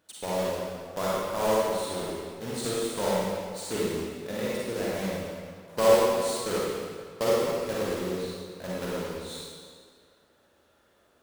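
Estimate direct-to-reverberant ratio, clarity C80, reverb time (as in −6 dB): −7.0 dB, −1.5 dB, 1.9 s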